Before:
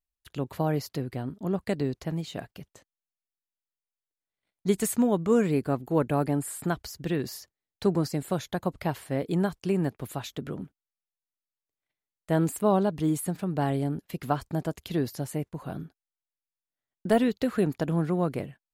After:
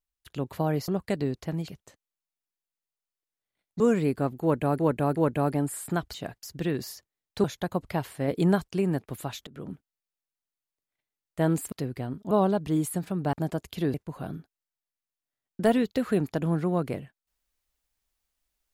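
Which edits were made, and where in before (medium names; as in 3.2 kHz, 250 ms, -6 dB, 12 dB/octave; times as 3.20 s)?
0.88–1.47 s: move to 12.63 s
2.27–2.56 s: move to 6.88 s
4.68–5.28 s: delete
5.90–6.27 s: loop, 3 plays
7.89–8.35 s: delete
9.19–9.55 s: gain +3.5 dB
10.38–10.63 s: fade in, from -23 dB
13.65–14.46 s: delete
15.07–15.40 s: delete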